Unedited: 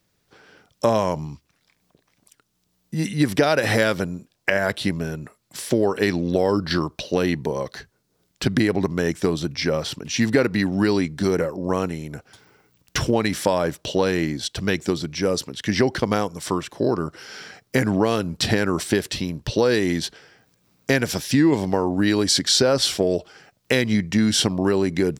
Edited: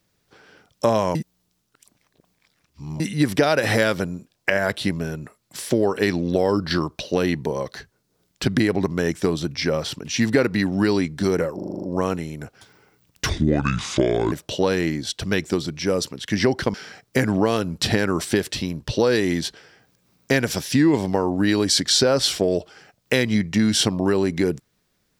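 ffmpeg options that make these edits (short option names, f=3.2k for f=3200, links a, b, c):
-filter_complex "[0:a]asplit=13[a][b][c][d][e][f][g][h][i][j][k][l][m];[a]atrim=end=1.152[n];[b]atrim=start=1.148:end=3.002,asetpts=PTS-STARTPTS,areverse[o];[c]atrim=start=2.998:end=11.592[p];[d]atrim=start=11.548:end=11.592[q];[e]atrim=start=11.548:end=11.592[r];[f]atrim=start=11.548:end=11.592[s];[g]atrim=start=11.548:end=11.592[t];[h]atrim=start=11.548:end=11.592[u];[i]atrim=start=11.548:end=11.592[v];[j]atrim=start=11.548:end=13.014[w];[k]atrim=start=13.01:end=13.68,asetpts=PTS-STARTPTS,asetrate=28665,aresample=44100[x];[l]atrim=start=13.676:end=16.102[y];[m]atrim=start=17.328[z];[n][o]acrossfade=d=0.004:c1=hsin:c2=hsin[aa];[aa][p]acrossfade=d=0.004:c1=hsin:c2=hsin[ab];[ab][q]acrossfade=d=0.004:c1=hsin:c2=hsin[ac];[ac][r]acrossfade=d=0.004:c1=hsin:c2=hsin[ad];[ad][s]acrossfade=d=0.004:c1=hsin:c2=hsin[ae];[ae][t]acrossfade=d=0.004:c1=hsin:c2=hsin[af];[af][u]acrossfade=d=0.004:c1=hsin:c2=hsin[ag];[ag][v]acrossfade=d=0.004:c1=hsin:c2=hsin[ah];[ah][w]acrossfade=d=0.004:c1=hsin:c2=hsin[ai];[ai][x]acrossfade=d=0.004:c1=hsin:c2=hsin[aj];[aj][y]acrossfade=d=0.004:c1=hsin:c2=hsin[ak];[ak][z]acrossfade=d=0.004:c1=hsin:c2=hsin"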